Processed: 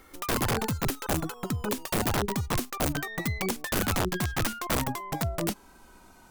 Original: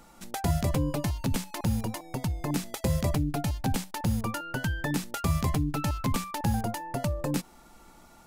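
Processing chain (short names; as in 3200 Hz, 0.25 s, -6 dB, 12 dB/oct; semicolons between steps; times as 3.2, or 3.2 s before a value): speed glide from 155% -> 107%; wrapped overs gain 20.5 dB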